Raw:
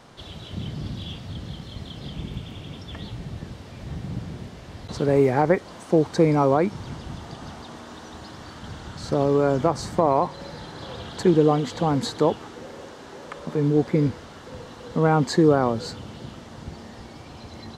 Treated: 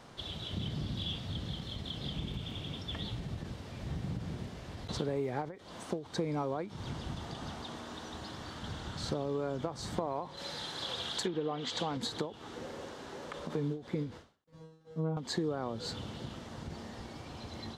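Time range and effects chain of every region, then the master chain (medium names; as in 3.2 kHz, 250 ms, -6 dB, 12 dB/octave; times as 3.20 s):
10.37–11.97 s: low-pass that closes with the level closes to 2.5 kHz, closed at -14 dBFS + tilt EQ +2.5 dB/octave
14.44–15.17 s: bass shelf 460 Hz +6.5 dB + gate -36 dBFS, range -32 dB + feedback comb 160 Hz, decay 0.53 s, mix 100%
whole clip: dynamic bell 3.5 kHz, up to +7 dB, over -55 dBFS, Q 3.2; compression 6:1, threshold -27 dBFS; endings held to a fixed fall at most 150 dB/s; trim -4 dB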